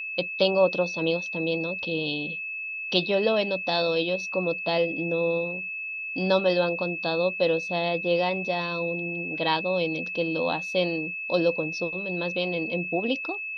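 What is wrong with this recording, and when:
tone 2600 Hz -31 dBFS

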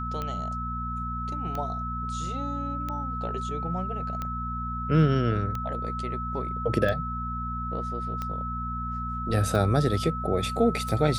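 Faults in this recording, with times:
hum 60 Hz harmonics 4 -34 dBFS
tick 45 rpm -19 dBFS
tone 1300 Hz -32 dBFS

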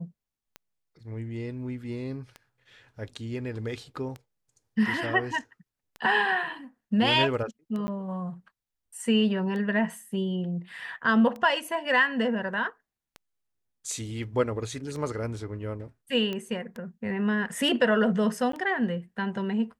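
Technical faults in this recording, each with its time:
tick 33 1/3 rpm -25 dBFS
7.87–7.88 gap 10 ms
16.33 pop -20 dBFS
18.52–18.53 gap

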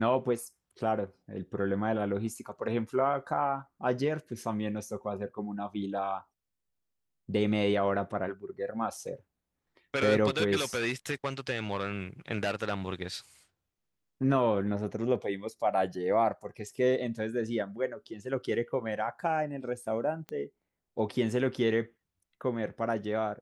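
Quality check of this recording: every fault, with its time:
20.29 pop -25 dBFS

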